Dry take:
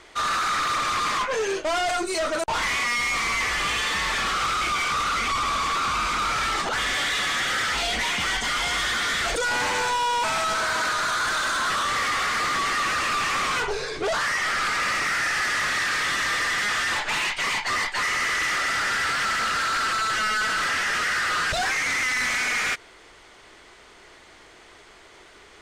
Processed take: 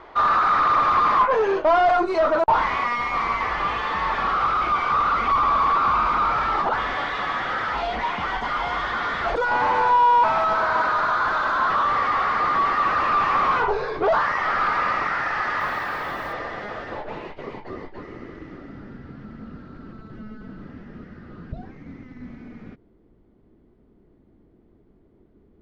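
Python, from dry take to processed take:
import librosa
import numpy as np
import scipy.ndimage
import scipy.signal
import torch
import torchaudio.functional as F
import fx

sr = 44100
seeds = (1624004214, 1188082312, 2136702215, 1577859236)

y = fx.peak_eq(x, sr, hz=4600.0, db=13.0, octaves=1.8)
y = fx.rider(y, sr, range_db=10, speed_s=2.0)
y = fx.filter_sweep_lowpass(y, sr, from_hz=980.0, to_hz=230.0, start_s=15.58, end_s=19.01, q=1.9)
y = fx.dmg_noise_colour(y, sr, seeds[0], colour='blue', level_db=-60.0, at=(15.59, 16.32), fade=0.02)
y = F.gain(torch.from_numpy(y), 1.5).numpy()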